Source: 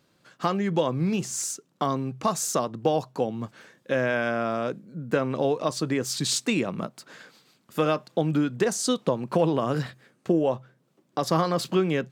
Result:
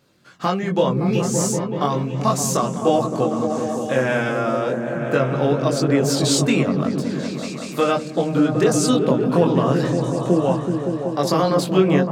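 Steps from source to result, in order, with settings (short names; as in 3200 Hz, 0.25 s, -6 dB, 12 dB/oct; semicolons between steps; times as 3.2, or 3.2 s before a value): chorus voices 2, 0.17 Hz, delay 22 ms, depth 1.3 ms; repeats that get brighter 0.189 s, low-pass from 200 Hz, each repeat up 1 oct, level 0 dB; gain +8 dB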